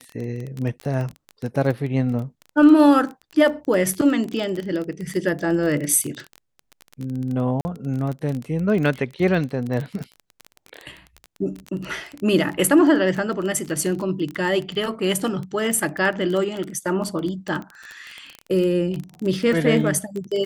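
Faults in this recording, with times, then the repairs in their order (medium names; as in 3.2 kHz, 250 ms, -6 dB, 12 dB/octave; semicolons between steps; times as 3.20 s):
crackle 21 per s -25 dBFS
7.61–7.65 s: dropout 40 ms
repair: de-click; interpolate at 7.61 s, 40 ms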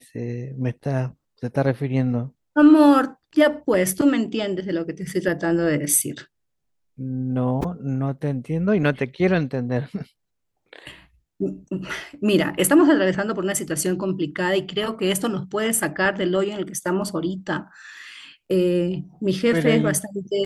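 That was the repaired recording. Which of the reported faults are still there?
nothing left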